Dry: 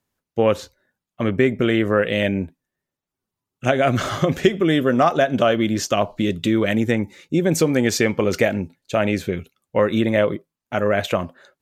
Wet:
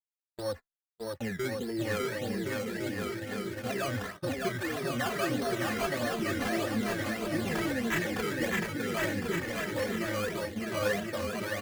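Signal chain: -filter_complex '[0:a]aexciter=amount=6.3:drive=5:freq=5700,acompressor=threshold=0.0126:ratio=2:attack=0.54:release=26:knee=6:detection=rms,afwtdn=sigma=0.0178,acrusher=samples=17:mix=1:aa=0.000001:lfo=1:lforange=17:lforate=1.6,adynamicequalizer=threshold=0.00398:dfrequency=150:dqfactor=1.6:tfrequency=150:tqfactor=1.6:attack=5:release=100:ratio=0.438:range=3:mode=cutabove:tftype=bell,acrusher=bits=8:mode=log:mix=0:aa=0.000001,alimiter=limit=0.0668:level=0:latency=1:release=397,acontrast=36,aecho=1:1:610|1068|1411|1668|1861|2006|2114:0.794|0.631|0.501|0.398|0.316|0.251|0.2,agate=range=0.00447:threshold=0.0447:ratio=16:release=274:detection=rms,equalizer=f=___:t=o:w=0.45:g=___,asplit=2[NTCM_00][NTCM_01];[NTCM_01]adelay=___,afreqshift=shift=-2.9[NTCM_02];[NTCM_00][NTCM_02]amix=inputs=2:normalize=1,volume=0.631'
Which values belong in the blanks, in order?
1800, 11.5, 2.6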